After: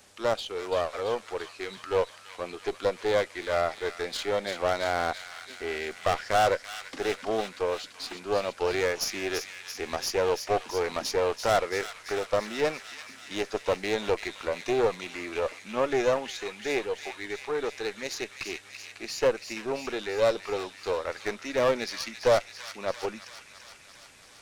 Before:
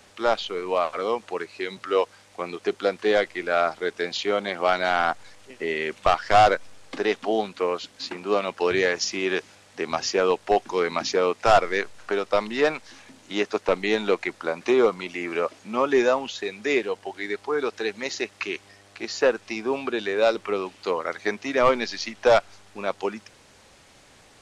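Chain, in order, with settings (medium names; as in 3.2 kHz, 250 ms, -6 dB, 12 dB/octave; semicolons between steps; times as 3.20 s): single-diode clipper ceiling -27 dBFS; treble shelf 6.6 kHz +10 dB; on a send: feedback echo behind a high-pass 337 ms, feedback 70%, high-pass 1.8 kHz, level -7 dB; on the sum: dynamic bell 540 Hz, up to +7 dB, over -38 dBFS, Q 2.2; trim -5.5 dB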